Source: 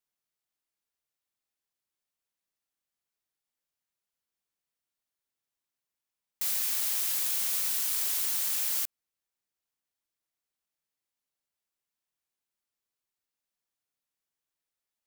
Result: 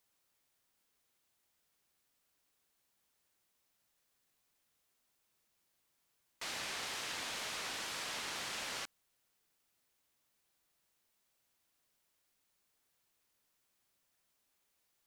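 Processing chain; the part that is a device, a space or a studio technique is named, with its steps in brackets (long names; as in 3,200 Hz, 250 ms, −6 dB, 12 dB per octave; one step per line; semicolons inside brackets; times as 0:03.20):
cassette deck with a dirty head (head-to-tape spacing loss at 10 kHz 26 dB; tape wow and flutter; white noise bed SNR 30 dB)
level +7 dB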